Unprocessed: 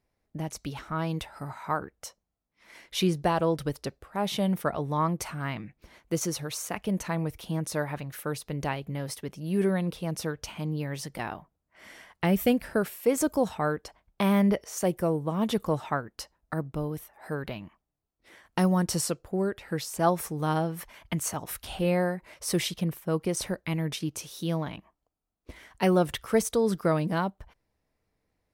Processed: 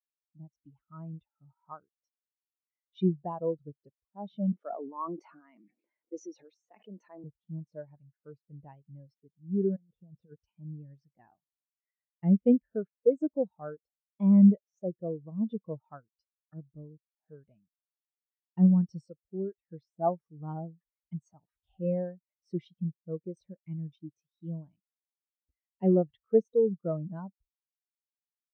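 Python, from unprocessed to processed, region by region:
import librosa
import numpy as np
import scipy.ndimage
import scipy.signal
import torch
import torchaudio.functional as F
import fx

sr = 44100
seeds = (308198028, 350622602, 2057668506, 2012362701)

y = fx.chain(x, sr, fx.highpass(hz=250.0, slope=24),
    fx.sustainer(db_per_s=23.0), at=(4.52, 7.24))
y = fx.chain(y, sr, fx.lowpass(hz=3000.0, slope=12),
    fx.over_compress(threshold_db=-33.0, ratio=-0.5),
    fx.band_widen(depth_pct=40), at=(9.76, 10.36))
y = scipy.signal.sosfilt(scipy.signal.butter(2, 5700.0, 'lowpass', fs=sr, output='sos'), y)
y = fx.high_shelf(y, sr, hz=3300.0, db=3.5)
y = fx.spectral_expand(y, sr, expansion=2.5)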